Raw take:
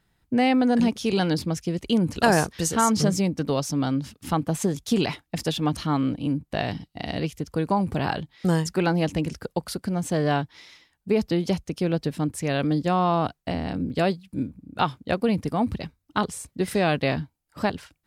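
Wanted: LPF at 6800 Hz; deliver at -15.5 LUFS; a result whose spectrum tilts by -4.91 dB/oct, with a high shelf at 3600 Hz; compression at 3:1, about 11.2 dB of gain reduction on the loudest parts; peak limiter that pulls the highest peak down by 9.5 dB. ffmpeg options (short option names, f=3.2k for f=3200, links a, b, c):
-af "lowpass=6.8k,highshelf=f=3.6k:g=8,acompressor=threshold=-29dB:ratio=3,volume=17.5dB,alimiter=limit=-4.5dB:level=0:latency=1"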